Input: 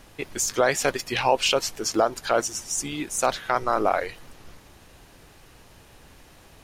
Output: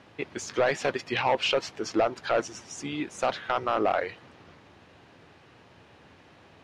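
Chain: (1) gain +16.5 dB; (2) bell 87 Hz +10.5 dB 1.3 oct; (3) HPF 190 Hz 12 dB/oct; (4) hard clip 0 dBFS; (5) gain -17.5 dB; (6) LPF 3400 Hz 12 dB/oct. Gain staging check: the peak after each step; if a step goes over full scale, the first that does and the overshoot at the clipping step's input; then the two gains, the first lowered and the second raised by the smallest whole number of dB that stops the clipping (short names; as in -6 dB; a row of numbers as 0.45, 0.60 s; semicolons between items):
+9.0, +9.5, +10.0, 0.0, -17.5, -17.0 dBFS; step 1, 10.0 dB; step 1 +6.5 dB, step 5 -7.5 dB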